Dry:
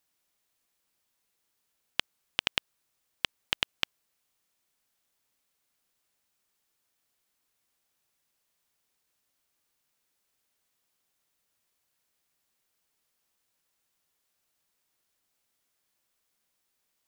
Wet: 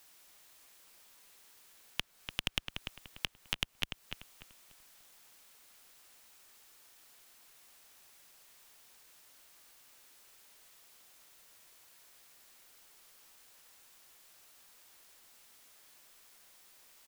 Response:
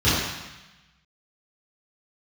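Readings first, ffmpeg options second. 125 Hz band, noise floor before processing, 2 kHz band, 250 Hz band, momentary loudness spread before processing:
+5.0 dB, -79 dBFS, -5.5 dB, +0.5 dB, 5 LU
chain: -filter_complex "[0:a]equalizer=f=120:w=0.39:g=-7,acrossover=split=230[a][b];[b]acompressor=threshold=-37dB:ratio=5[c];[a][c]amix=inputs=2:normalize=0,alimiter=limit=-21.5dB:level=0:latency=1:release=99,asoftclip=type=tanh:threshold=-30.5dB,asplit=2[d][e];[e]adelay=293,lowpass=f=3.2k:p=1,volume=-6dB,asplit=2[f][g];[g]adelay=293,lowpass=f=3.2k:p=1,volume=0.32,asplit=2[h][i];[i]adelay=293,lowpass=f=3.2k:p=1,volume=0.32,asplit=2[j][k];[k]adelay=293,lowpass=f=3.2k:p=1,volume=0.32[l];[f][h][j][l]amix=inputs=4:normalize=0[m];[d][m]amix=inputs=2:normalize=0,volume=17dB"

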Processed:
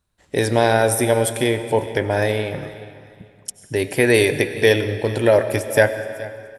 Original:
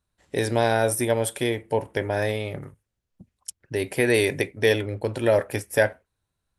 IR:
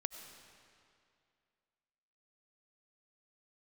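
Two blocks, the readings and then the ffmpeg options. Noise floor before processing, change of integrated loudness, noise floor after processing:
-81 dBFS, +5.5 dB, -55 dBFS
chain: -filter_complex "[0:a]aecho=1:1:423|846:0.119|0.0309,asplit=2[a][b];[1:a]atrim=start_sample=2205[c];[b][c]afir=irnorm=-1:irlink=0,volume=5.5dB[d];[a][d]amix=inputs=2:normalize=0,volume=-3dB"

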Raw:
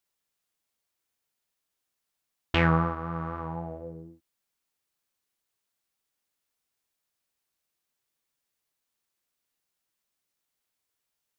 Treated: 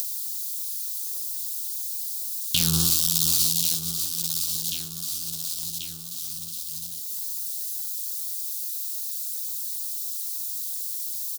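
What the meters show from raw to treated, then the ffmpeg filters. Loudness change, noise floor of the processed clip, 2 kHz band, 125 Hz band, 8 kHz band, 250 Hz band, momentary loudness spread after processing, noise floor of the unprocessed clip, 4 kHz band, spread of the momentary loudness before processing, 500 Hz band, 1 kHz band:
+3.0 dB, -35 dBFS, -9.0 dB, -2.0 dB, n/a, -2.5 dB, 11 LU, -83 dBFS, +16.5 dB, 18 LU, under -10 dB, -16.0 dB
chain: -af "aeval=exprs='val(0)+0.5*0.0316*sgn(val(0))':c=same,highpass=57,agate=range=-57dB:threshold=-29dB:ratio=16:detection=peak,aecho=1:1:1087|2174|3261:0.106|0.0339|0.0108,crystalizer=i=3:c=0,tremolo=f=250:d=0.947,acompressor=mode=upward:threshold=-30dB:ratio=2.5,equalizer=f=125:t=o:w=1:g=9,equalizer=f=250:t=o:w=1:g=7,equalizer=f=500:t=o:w=1:g=-10,equalizer=f=1k:t=o:w=1:g=-7,equalizer=f=2k:t=o:w=1:g=-7,equalizer=f=4k:t=o:w=1:g=6,aexciter=amount=7.2:drive=9:freq=3k,alimiter=level_in=1dB:limit=-1dB:release=50:level=0:latency=1,volume=-3.5dB"

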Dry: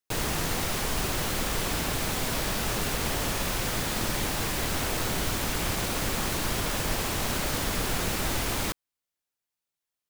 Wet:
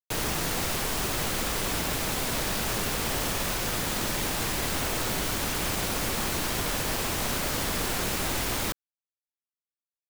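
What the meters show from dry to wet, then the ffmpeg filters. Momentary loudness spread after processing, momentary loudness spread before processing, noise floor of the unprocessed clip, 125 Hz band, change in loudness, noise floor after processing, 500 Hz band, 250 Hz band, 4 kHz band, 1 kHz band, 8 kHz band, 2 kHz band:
0 LU, 0 LU, under -85 dBFS, -2.0 dB, +0.5 dB, under -85 dBFS, 0.0 dB, -0.5 dB, +0.5 dB, 0.0 dB, +1.0 dB, +0.5 dB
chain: -filter_complex "[0:a]acrossover=split=190|560|3800[a][b][c][d];[a]alimiter=level_in=6dB:limit=-24dB:level=0:latency=1:release=29,volume=-6dB[e];[e][b][c][d]amix=inputs=4:normalize=0,acrusher=bits=4:mix=0:aa=0.5"

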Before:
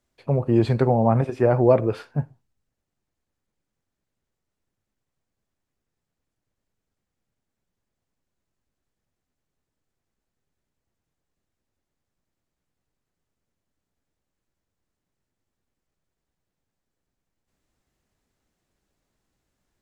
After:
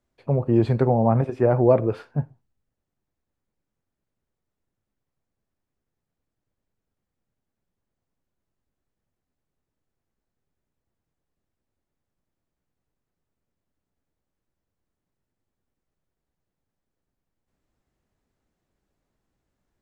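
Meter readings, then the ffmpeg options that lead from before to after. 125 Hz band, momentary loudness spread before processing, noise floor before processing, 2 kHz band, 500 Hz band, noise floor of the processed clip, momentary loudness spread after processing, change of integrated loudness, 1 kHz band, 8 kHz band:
0.0 dB, 12 LU, -83 dBFS, -3.0 dB, -0.5 dB, -84 dBFS, 12 LU, -0.5 dB, -1.0 dB, n/a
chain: -af "highshelf=f=2.2k:g=-8"

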